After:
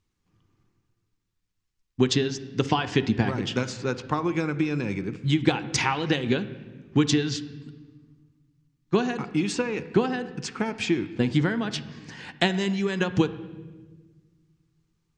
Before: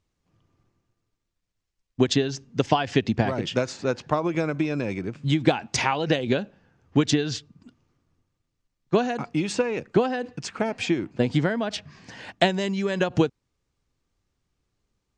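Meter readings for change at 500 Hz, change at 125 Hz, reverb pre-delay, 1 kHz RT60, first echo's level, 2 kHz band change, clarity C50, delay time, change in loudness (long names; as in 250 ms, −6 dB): −3.0 dB, +0.5 dB, 5 ms, 1.1 s, no echo audible, 0.0 dB, 14.0 dB, no echo audible, −1.0 dB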